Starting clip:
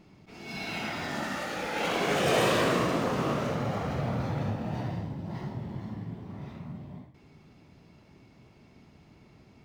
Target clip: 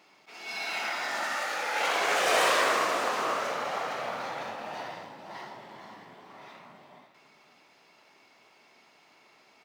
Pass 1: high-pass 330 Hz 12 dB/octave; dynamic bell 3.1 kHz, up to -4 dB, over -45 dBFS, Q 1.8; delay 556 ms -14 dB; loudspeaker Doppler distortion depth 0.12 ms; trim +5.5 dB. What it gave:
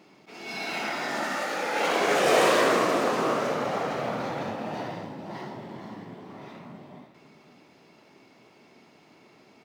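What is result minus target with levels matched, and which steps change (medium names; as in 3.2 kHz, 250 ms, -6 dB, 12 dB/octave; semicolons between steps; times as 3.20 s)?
250 Hz band +10.5 dB
change: high-pass 770 Hz 12 dB/octave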